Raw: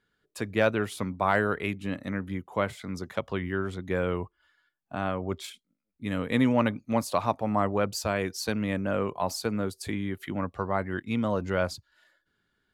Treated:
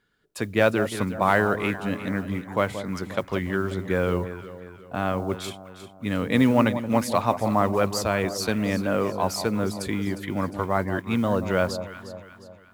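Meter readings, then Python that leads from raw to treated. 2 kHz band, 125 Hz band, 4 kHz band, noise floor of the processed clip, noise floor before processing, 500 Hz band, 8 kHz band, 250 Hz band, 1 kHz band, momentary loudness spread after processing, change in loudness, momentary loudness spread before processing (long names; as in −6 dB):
+4.5 dB, +4.5 dB, +4.5 dB, −49 dBFS, −78 dBFS, +4.5 dB, +4.5 dB, +4.5 dB, +4.5 dB, 13 LU, +4.5 dB, 9 LU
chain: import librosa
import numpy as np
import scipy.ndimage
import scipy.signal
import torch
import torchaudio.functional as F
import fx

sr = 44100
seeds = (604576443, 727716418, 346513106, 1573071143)

p1 = fx.mod_noise(x, sr, seeds[0], snr_db=31)
p2 = p1 + fx.echo_alternate(p1, sr, ms=178, hz=1000.0, feedback_pct=66, wet_db=-9.5, dry=0)
y = F.gain(torch.from_numpy(p2), 4.0).numpy()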